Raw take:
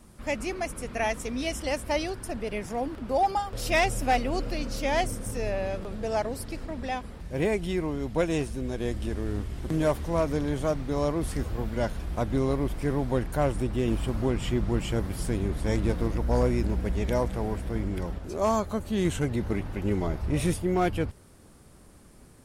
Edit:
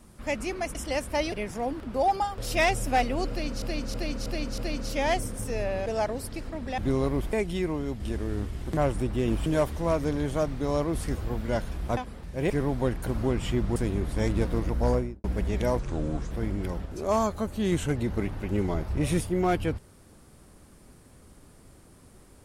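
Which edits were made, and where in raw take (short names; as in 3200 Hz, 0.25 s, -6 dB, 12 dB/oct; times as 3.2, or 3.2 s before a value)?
0.75–1.51 cut
2.08–2.47 cut
4.45–4.77 loop, 5 plays
5.73–6.02 cut
6.94–7.47 swap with 12.25–12.8
8.14–8.97 cut
13.37–14.06 move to 9.74
14.75–15.24 cut
16.34–16.72 studio fade out
17.27–17.64 speed 71%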